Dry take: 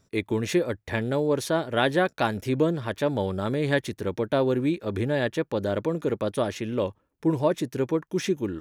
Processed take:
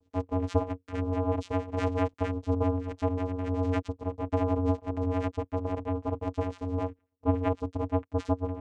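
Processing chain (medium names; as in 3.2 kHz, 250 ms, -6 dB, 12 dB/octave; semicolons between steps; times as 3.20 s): vocoder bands 4, square 92.7 Hz; ring modulator 180 Hz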